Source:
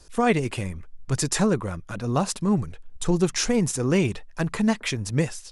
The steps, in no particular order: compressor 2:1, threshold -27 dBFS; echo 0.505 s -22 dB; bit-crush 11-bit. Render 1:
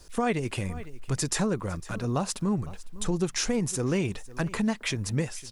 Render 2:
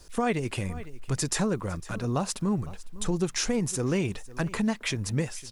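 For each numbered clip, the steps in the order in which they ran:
echo > bit-crush > compressor; echo > compressor > bit-crush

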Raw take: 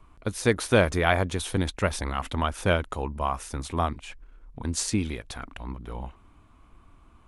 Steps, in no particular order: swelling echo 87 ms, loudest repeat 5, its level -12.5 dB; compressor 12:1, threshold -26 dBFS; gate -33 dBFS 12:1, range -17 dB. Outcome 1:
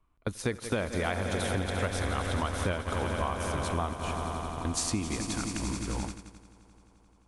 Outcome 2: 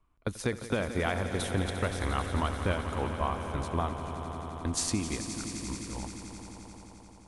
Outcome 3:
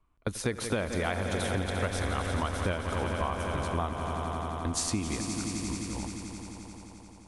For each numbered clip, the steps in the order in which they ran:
swelling echo > compressor > gate; compressor > gate > swelling echo; gate > swelling echo > compressor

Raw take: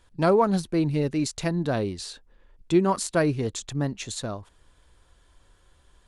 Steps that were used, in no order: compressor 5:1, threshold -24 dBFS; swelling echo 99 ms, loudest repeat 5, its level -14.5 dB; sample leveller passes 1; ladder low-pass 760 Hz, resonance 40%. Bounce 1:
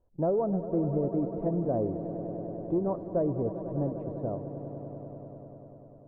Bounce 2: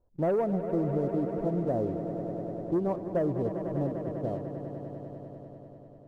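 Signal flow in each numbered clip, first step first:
sample leveller > ladder low-pass > compressor > swelling echo; ladder low-pass > sample leveller > swelling echo > compressor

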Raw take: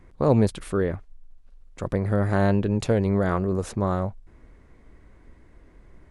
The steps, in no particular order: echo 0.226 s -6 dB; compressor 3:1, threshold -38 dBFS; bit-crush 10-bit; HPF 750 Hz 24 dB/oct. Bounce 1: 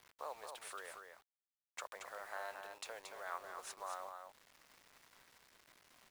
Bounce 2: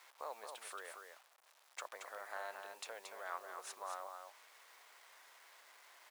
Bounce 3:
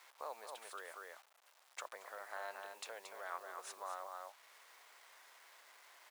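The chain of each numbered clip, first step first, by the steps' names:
compressor > HPF > bit-crush > echo; compressor > echo > bit-crush > HPF; echo > compressor > bit-crush > HPF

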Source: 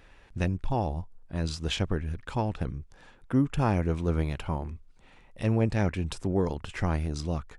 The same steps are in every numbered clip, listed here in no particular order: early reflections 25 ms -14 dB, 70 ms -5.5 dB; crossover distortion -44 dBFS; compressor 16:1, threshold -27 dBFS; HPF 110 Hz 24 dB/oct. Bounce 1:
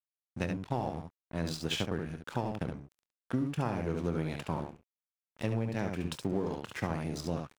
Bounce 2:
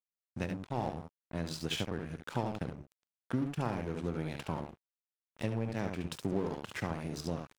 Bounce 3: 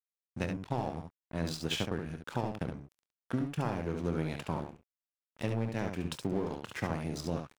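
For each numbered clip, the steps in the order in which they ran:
HPF > crossover distortion > early reflections > compressor; early reflections > compressor > HPF > crossover distortion; HPF > compressor > crossover distortion > early reflections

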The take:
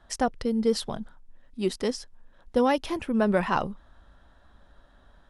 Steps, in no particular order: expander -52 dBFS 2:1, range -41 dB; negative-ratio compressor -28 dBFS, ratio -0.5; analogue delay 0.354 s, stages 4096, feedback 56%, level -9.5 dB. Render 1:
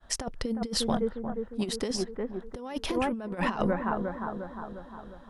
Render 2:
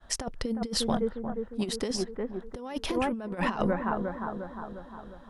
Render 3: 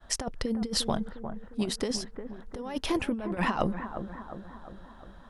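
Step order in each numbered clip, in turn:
analogue delay > expander > negative-ratio compressor; analogue delay > negative-ratio compressor > expander; negative-ratio compressor > analogue delay > expander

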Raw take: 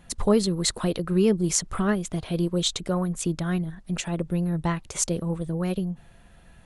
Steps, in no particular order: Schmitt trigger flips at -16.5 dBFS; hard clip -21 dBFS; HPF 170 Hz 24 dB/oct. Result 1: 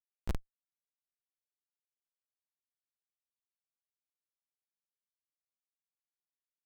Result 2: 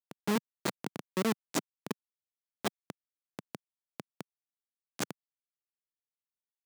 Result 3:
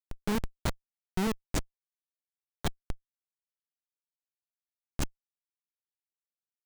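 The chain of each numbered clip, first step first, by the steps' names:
hard clip > HPF > Schmitt trigger; Schmitt trigger > hard clip > HPF; HPF > Schmitt trigger > hard clip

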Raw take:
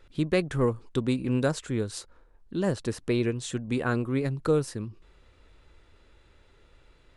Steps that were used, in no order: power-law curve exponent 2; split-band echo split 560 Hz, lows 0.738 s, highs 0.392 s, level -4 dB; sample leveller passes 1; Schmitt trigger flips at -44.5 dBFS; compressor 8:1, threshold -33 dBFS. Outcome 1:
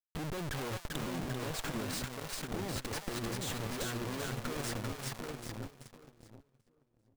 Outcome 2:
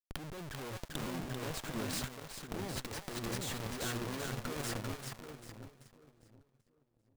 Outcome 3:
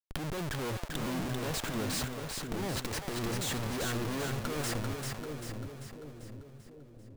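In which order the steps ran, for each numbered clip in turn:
Schmitt trigger > split-band echo > power-law curve > sample leveller > compressor; sample leveller > Schmitt trigger > compressor > split-band echo > power-law curve; sample leveller > Schmitt trigger > power-law curve > compressor > split-band echo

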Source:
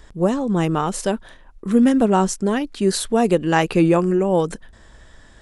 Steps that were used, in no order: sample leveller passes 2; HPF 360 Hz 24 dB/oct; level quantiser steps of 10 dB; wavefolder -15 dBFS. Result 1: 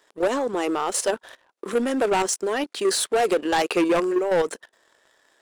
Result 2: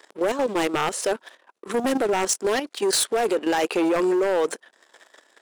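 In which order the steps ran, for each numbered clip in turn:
HPF > level quantiser > wavefolder > sample leveller; sample leveller > HPF > level quantiser > wavefolder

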